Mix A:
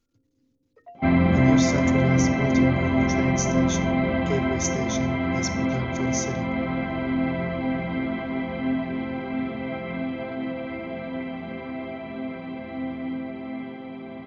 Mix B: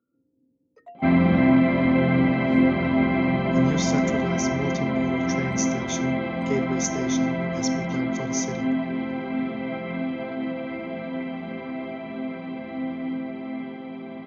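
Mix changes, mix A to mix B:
speech: entry +2.20 s; first sound: remove air absorption 210 m; master: add resonant low shelf 130 Hz -6.5 dB, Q 1.5

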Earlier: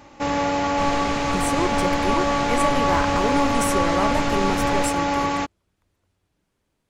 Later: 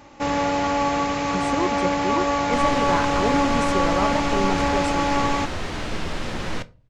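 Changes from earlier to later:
speech: add air absorption 110 m; second sound: entry +1.75 s

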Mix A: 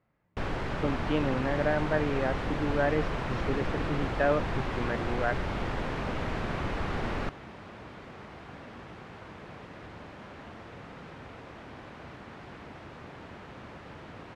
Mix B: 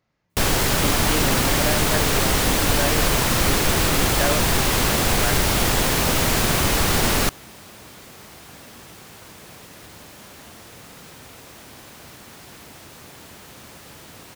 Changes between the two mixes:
first sound +11.0 dB; master: remove LPF 2000 Hz 12 dB/oct

